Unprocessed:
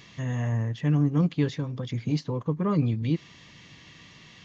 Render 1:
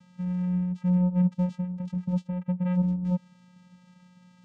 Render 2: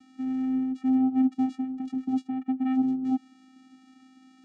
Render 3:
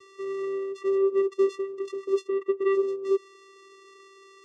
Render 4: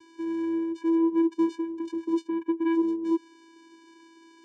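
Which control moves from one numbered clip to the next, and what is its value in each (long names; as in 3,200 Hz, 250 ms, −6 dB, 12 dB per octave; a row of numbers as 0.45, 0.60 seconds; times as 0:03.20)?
channel vocoder, frequency: 180, 260, 390, 330 Hertz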